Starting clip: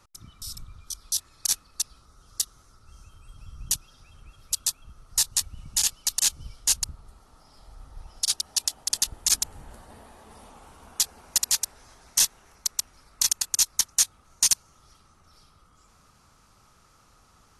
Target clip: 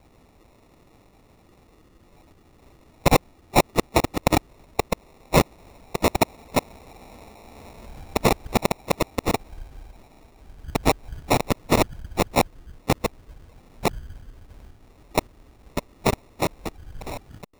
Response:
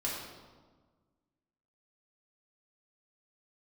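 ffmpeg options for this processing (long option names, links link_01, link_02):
-af "areverse,acrusher=samples=28:mix=1:aa=0.000001,volume=4dB"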